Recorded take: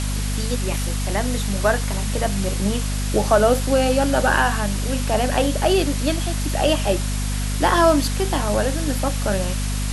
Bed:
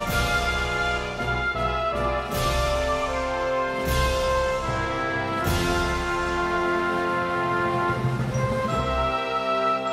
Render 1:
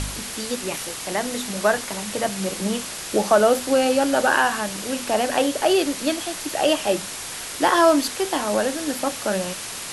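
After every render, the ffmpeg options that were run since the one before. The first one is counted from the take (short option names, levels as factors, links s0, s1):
-af "bandreject=f=50:t=h:w=4,bandreject=f=100:t=h:w=4,bandreject=f=150:t=h:w=4,bandreject=f=200:t=h:w=4,bandreject=f=250:t=h:w=4"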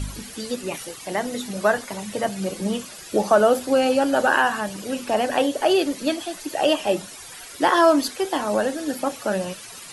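-af "afftdn=nr=13:nf=-33"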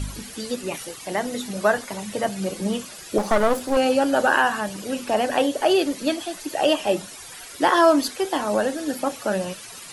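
-filter_complex "[0:a]asettb=1/sr,asplit=3[s0][s1][s2];[s0]atrim=end=3.184[s3];[s1]atrim=start=3.18:end=3.77,asetpts=PTS-STARTPTS,afade=t=in:d=0.004:c=qsin,afade=t=out:st=0.586:d=0.004:c=qsin,aeval=exprs='clip(val(0),-1,0.0376)':c=same[s4];[s2]atrim=start=3.766[s5];[s3][s4]acrossfade=d=0.004:c1=hsin:c2=qsin[s6];[s6][s5]acrossfade=d=0.004:c1=qsin:c2=hsin"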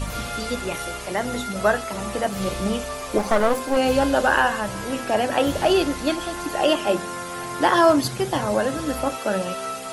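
-filter_complex "[1:a]volume=0.422[s0];[0:a][s0]amix=inputs=2:normalize=0"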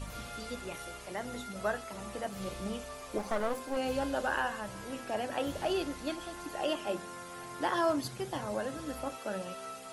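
-af "volume=0.211"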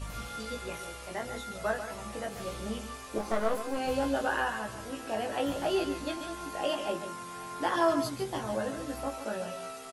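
-filter_complex "[0:a]asplit=2[s0][s1];[s1]adelay=18,volume=0.708[s2];[s0][s2]amix=inputs=2:normalize=0,aecho=1:1:142:0.335"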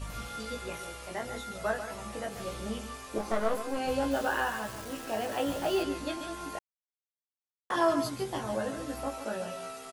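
-filter_complex "[0:a]asettb=1/sr,asplit=3[s0][s1][s2];[s0]atrim=end=4.114[s3];[s1]atrim=start=4.11:end=5.83,asetpts=PTS-STARTPTS,afade=t=in:d=0.004:c=qsin,afade=t=out:st=1.716:d=0.004:c=qsin,acrusher=bits=8:dc=4:mix=0:aa=0.000001[s4];[s2]atrim=start=5.826[s5];[s3][s4]acrossfade=d=0.004:c1=hsin:c2=qsin[s6];[s6][s5]acrossfade=d=0.004:c1=qsin:c2=hsin,asplit=3[s7][s8][s9];[s7]atrim=end=6.59,asetpts=PTS-STARTPTS,afade=t=out:st=6.586:d=0.004:c=hsin[s10];[s8]atrim=start=6.59:end=7.7,asetpts=PTS-STARTPTS,volume=0[s11];[s9]atrim=start=7.7,asetpts=PTS-STARTPTS,afade=t=in:d=0.004:c=hsin[s12];[s10][s11][s12]concat=n=3:v=0:a=1"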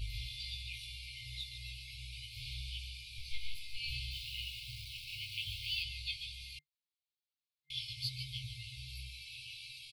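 -af "afftfilt=real='re*(1-between(b*sr/4096,150,2100))':imag='im*(1-between(b*sr/4096,150,2100))':win_size=4096:overlap=0.75,highshelf=f=5400:t=q:w=3:g=-8"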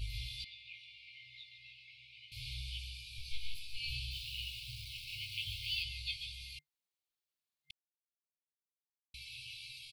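-filter_complex "[0:a]asettb=1/sr,asplit=3[s0][s1][s2];[s0]atrim=end=0.444[s3];[s1]atrim=start=0.44:end=2.32,asetpts=PTS-STARTPTS,afade=t=in:d=0.004:c=qsin,afade=t=out:st=1.876:d=0.004:c=qsin,highpass=360,lowpass=2200[s4];[s2]atrim=start=2.316[s5];[s3][s4]acrossfade=d=0.004:c1=hsin:c2=qsin[s6];[s6][s5]acrossfade=d=0.004:c1=qsin:c2=hsin,asettb=1/sr,asplit=3[s7][s8][s9];[s7]atrim=end=2.844[s10];[s8]atrim=start=2.84:end=4.82,asetpts=PTS-STARTPTS,afade=t=in:d=0.004:c=qsin,afade=t=out:st=1.976:d=0.004:c=qsin,bandreject=f=2100:w=12[s11];[s9]atrim=start=4.816[s12];[s10][s11]acrossfade=d=0.004:c1=hsin:c2=qsin[s13];[s13][s12]acrossfade=d=0.004:c1=qsin:c2=hsin,asplit=3[s14][s15][s16];[s14]atrim=end=7.71,asetpts=PTS-STARTPTS,afade=t=out:st=7.706:d=0.004:c=hsin[s17];[s15]atrim=start=7.71:end=9.14,asetpts=PTS-STARTPTS,volume=0[s18];[s16]atrim=start=9.14,asetpts=PTS-STARTPTS,afade=t=in:d=0.004:c=hsin[s19];[s17][s18][s19]concat=n=3:v=0:a=1"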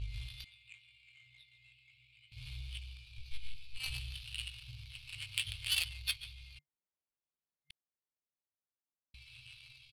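-af "adynamicsmooth=sensitivity=5.5:basefreq=1000,crystalizer=i=6:c=0"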